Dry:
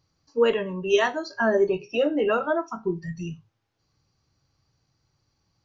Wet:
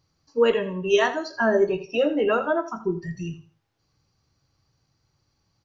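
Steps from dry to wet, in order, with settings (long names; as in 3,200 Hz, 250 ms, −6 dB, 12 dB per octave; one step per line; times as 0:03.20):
repeating echo 82 ms, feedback 26%, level −14 dB
level +1 dB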